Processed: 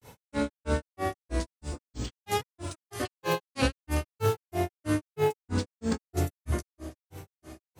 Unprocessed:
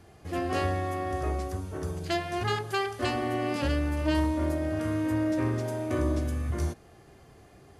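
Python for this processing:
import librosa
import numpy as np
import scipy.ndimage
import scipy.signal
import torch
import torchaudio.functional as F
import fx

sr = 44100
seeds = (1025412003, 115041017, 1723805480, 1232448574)

y = fx.high_shelf(x, sr, hz=4000.0, db=11.5)
y = fx.echo_feedback(y, sr, ms=747, feedback_pct=43, wet_db=-17.0)
y = fx.granulator(y, sr, seeds[0], grain_ms=178.0, per_s=3.1, spray_ms=10.0, spread_st=7)
y = y * librosa.db_to_amplitude(4.5)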